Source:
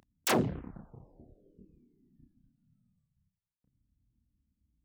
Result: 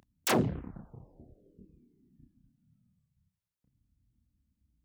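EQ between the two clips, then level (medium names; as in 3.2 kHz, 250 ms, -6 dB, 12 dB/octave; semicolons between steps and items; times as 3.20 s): high-pass 77 Hz 6 dB/octave; bass shelf 110 Hz +8.5 dB; 0.0 dB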